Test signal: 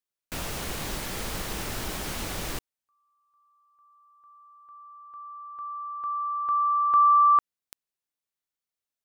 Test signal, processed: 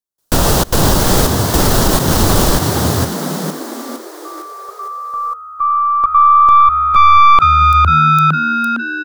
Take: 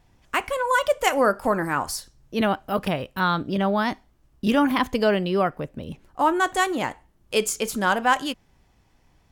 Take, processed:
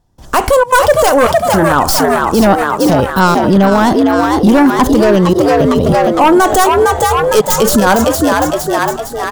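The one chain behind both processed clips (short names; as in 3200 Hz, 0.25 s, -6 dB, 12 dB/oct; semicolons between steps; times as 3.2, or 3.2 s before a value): tracing distortion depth 0.22 ms; bell 2300 Hz -14.5 dB 0.88 oct; in parallel at -3 dB: sine folder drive 11 dB, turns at -5.5 dBFS; on the sum: step gate "..xxxxx.xxxxxx." 166 bpm -24 dB; on a send: frequency-shifting echo 0.458 s, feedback 51%, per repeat +77 Hz, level -6.5 dB; on the sum: maximiser +12 dB; gain -1 dB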